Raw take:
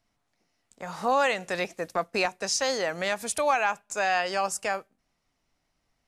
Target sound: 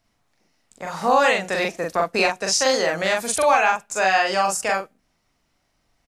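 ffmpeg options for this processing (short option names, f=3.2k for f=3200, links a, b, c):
-filter_complex "[0:a]asplit=2[a][b];[b]adelay=42,volume=-2dB[c];[a][c]amix=inputs=2:normalize=0,volume=5dB"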